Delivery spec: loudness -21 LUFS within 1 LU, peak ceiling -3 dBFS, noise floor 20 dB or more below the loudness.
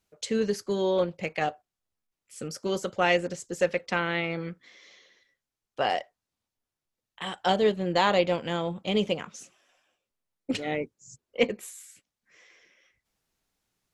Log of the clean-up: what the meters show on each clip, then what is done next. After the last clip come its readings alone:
loudness -28.0 LUFS; peak level -7.5 dBFS; loudness target -21.0 LUFS
-> trim +7 dB; peak limiter -3 dBFS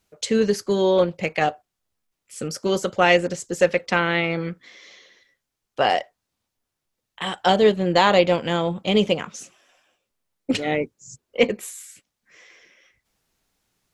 loudness -21.5 LUFS; peak level -3.0 dBFS; noise floor -82 dBFS

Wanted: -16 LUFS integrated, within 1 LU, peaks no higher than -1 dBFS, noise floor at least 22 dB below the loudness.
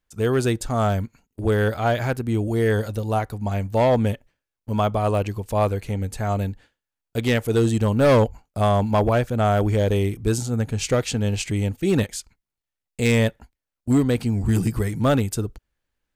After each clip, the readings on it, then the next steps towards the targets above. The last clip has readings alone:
clipped samples 1.1%; clipping level -12.0 dBFS; loudness -22.5 LUFS; peak level -12.0 dBFS; loudness target -16.0 LUFS
-> clip repair -12 dBFS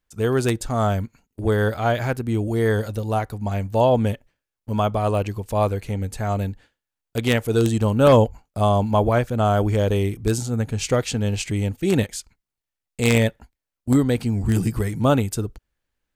clipped samples 0.0%; loudness -22.0 LUFS; peak level -3.0 dBFS; loudness target -16.0 LUFS
-> trim +6 dB; peak limiter -1 dBFS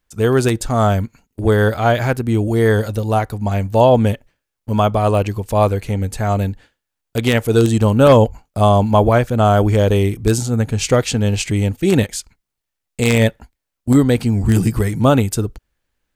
loudness -16.0 LUFS; peak level -1.0 dBFS; noise floor -79 dBFS

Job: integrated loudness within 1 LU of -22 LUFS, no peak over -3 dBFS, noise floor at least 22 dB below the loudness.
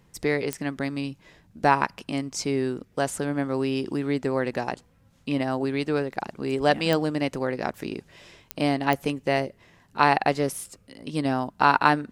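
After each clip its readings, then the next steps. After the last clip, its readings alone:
clicks found 4; loudness -26.0 LUFS; peak level -3.0 dBFS; loudness target -22.0 LUFS
-> de-click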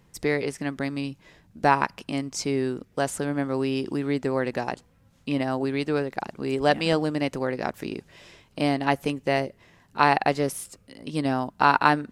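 clicks found 0; loudness -26.0 LUFS; peak level -3.0 dBFS; loudness target -22.0 LUFS
-> trim +4 dB; peak limiter -3 dBFS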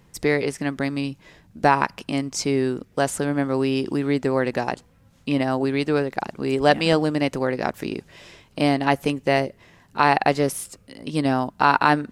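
loudness -22.5 LUFS; peak level -3.0 dBFS; noise floor -56 dBFS

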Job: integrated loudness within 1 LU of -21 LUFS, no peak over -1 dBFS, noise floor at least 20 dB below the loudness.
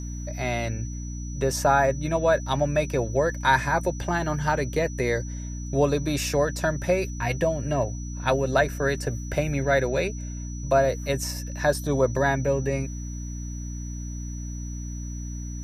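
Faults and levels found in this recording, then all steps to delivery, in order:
hum 60 Hz; highest harmonic 300 Hz; hum level -31 dBFS; steady tone 5.9 kHz; tone level -43 dBFS; loudness -26.0 LUFS; peak level -8.5 dBFS; loudness target -21.0 LUFS
-> hum notches 60/120/180/240/300 Hz; band-stop 5.9 kHz, Q 30; trim +5 dB

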